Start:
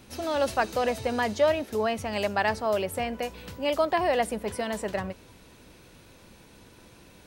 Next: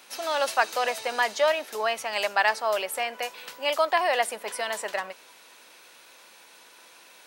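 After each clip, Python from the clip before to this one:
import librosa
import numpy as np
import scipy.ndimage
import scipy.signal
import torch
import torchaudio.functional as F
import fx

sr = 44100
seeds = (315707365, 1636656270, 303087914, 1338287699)

y = scipy.signal.sosfilt(scipy.signal.butter(2, 810.0, 'highpass', fs=sr, output='sos'), x)
y = y * 10.0 ** (5.5 / 20.0)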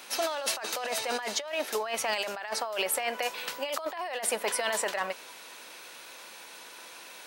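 y = fx.over_compress(x, sr, threshold_db=-32.0, ratio=-1.0)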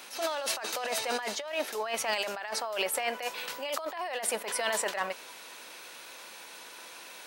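y = fx.attack_slew(x, sr, db_per_s=120.0)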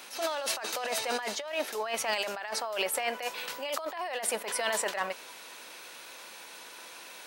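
y = x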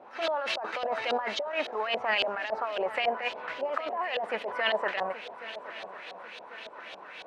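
y = fx.filter_lfo_lowpass(x, sr, shape='saw_up', hz=3.6, low_hz=570.0, high_hz=3800.0, q=2.5)
y = fx.echo_swing(y, sr, ms=1098, ratio=3, feedback_pct=45, wet_db=-15.0)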